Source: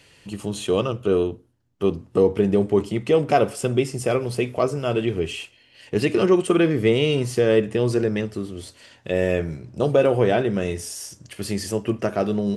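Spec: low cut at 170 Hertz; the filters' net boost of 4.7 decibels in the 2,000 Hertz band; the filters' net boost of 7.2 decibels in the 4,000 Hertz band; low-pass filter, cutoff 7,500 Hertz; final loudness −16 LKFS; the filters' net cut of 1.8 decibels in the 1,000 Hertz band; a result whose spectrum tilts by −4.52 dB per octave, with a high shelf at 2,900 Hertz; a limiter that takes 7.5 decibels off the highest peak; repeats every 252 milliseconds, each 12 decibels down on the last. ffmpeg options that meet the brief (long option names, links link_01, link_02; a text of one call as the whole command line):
ffmpeg -i in.wav -af "highpass=170,lowpass=7500,equalizer=frequency=1000:width_type=o:gain=-4.5,equalizer=frequency=2000:width_type=o:gain=3.5,highshelf=frequency=2900:gain=3.5,equalizer=frequency=4000:width_type=o:gain=6.5,alimiter=limit=-10.5dB:level=0:latency=1,aecho=1:1:252|504|756:0.251|0.0628|0.0157,volume=7.5dB" out.wav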